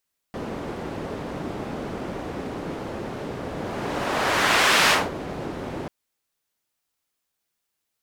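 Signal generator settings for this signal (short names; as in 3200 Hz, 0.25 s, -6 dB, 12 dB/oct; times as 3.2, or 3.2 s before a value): whoosh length 5.54 s, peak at 4.55, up 1.49 s, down 0.24 s, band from 350 Hz, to 2000 Hz, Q 0.7, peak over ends 14.5 dB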